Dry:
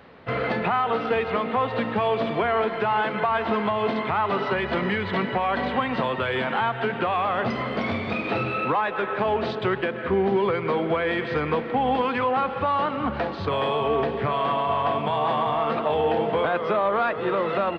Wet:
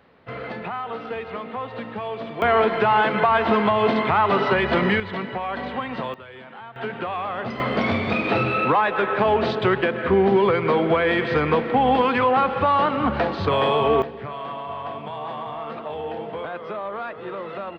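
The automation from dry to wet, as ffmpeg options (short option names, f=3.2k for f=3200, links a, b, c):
-af "asetnsamples=n=441:p=0,asendcmd='2.42 volume volume 5dB;5 volume volume -4dB;6.14 volume volume -16dB;6.76 volume volume -4dB;7.6 volume volume 4.5dB;14.02 volume volume -8dB',volume=-7dB"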